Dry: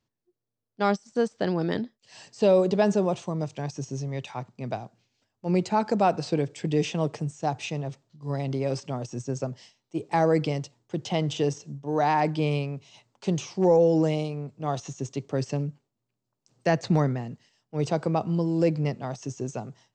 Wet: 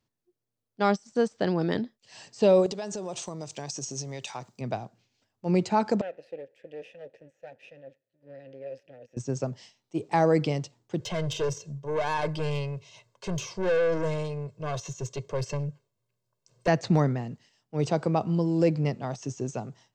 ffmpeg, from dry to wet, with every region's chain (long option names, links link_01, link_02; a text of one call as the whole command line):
ffmpeg -i in.wav -filter_complex "[0:a]asettb=1/sr,asplit=3[link_01][link_02][link_03];[link_01]atrim=end=2.664[link_04];[link_02]atrim=start=2.66:end=4.61,asetpts=PTS-STARTPTS,afade=type=in:duration=0.004:curve=qsin,afade=type=out:start_time=1.946:duration=0.004:curve=qsin,acompressor=threshold=-29dB:ratio=10:attack=3.2:release=140:knee=1:detection=peak,bass=frequency=250:gain=-6,treble=frequency=4000:gain=12[link_05];[link_03]atrim=start=4.606[link_06];[link_04][link_05]acrossfade=duration=0.004:curve1=hsin:curve2=qsin[link_07];[link_07][link_06]acrossfade=duration=0.004:curve1=qsin:curve2=hsin,asettb=1/sr,asplit=3[link_08][link_09][link_10];[link_08]atrim=end=6.014[link_11];[link_09]atrim=start=6.01:end=9.17,asetpts=PTS-STARTPTS,afade=type=in:duration=0.004:curve=qsin,afade=type=out:start_time=3.156:duration=0.004:curve=qsin,asubboost=boost=10:cutoff=110,aeval=exprs='max(val(0),0)':channel_layout=same,asplit=3[link_12][link_13][link_14];[link_12]bandpass=frequency=530:width_type=q:width=8,volume=0dB[link_15];[link_13]bandpass=frequency=1840:width_type=q:width=8,volume=-6dB[link_16];[link_14]bandpass=frequency=2480:width_type=q:width=8,volume=-9dB[link_17];[link_15][link_16][link_17]amix=inputs=3:normalize=0[link_18];[link_10]atrim=start=9.166[link_19];[link_11][link_18]acrossfade=duration=0.004:curve1=hsin:curve2=qsin[link_20];[link_20][link_19]acrossfade=duration=0.004:curve1=qsin:curve2=hsin,asettb=1/sr,asplit=3[link_21][link_22][link_23];[link_21]atrim=end=11.004[link_24];[link_22]atrim=start=11:end=16.68,asetpts=PTS-STARTPTS,afade=type=in:duration=0.004:curve=qsin,afade=type=out:start_time=5.676:duration=0.004:curve=qsin,aeval=exprs='(tanh(20*val(0)+0.2)-tanh(0.2))/20':channel_layout=same,aecho=1:1:1.9:0.77,atrim=end_sample=250488[link_25];[link_23]atrim=start=16.676[link_26];[link_24][link_25]acrossfade=duration=0.004:curve1=hsin:curve2=qsin[link_27];[link_27][link_26]acrossfade=duration=0.004:curve1=qsin:curve2=hsin" out.wav